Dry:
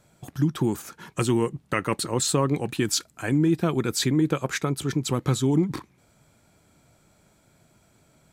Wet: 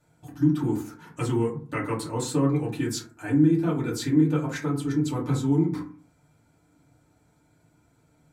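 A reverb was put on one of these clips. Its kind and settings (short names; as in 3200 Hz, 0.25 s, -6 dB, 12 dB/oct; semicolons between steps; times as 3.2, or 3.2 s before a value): FDN reverb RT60 0.42 s, low-frequency decay 1.35×, high-frequency decay 0.4×, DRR -7 dB; gain -12.5 dB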